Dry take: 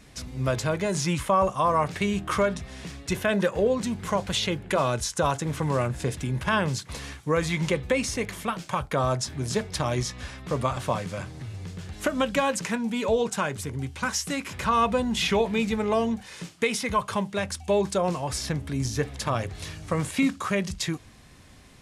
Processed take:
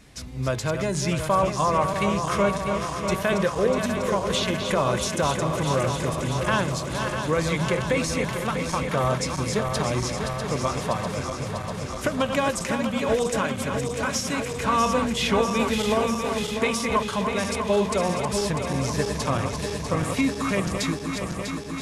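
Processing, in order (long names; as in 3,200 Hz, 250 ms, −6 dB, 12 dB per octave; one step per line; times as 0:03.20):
feedback delay that plays each chunk backwards 323 ms, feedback 85%, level −7 dB
0:15.59–0:16.55: high-shelf EQ 11,000 Hz +10.5 dB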